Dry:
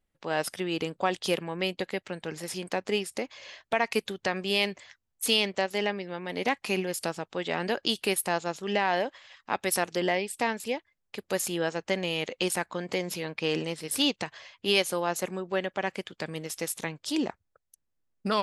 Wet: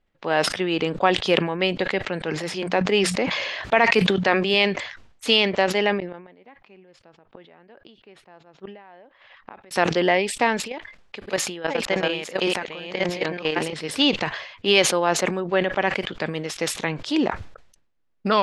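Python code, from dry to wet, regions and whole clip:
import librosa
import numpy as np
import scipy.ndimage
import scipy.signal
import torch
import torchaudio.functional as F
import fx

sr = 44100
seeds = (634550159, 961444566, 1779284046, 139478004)

y = fx.chain(x, sr, fx.highpass(hz=60.0, slope=12),
    fx.hum_notches(base_hz=60, count=3),
    fx.sustainer(db_per_s=28.0), at=(2.23, 4.54))
y = fx.chain(y, sr, fx.gate_flip(shuts_db=-25.0, range_db=-27),
    fx.spacing_loss(db_at_10k=25), at=(5.98, 9.71))
y = fx.chain(y, sr, fx.reverse_delay(ms=617, wet_db=-1.5),
    fx.low_shelf(hz=450.0, db=-3.5),
    fx.level_steps(step_db=14), at=(10.62, 13.73))
y = scipy.signal.sosfilt(scipy.signal.butter(2, 3700.0, 'lowpass', fs=sr, output='sos'), y)
y = fx.peak_eq(y, sr, hz=92.0, db=-4.0, octaves=2.6)
y = fx.sustainer(y, sr, db_per_s=73.0)
y = F.gain(torch.from_numpy(y), 8.0).numpy()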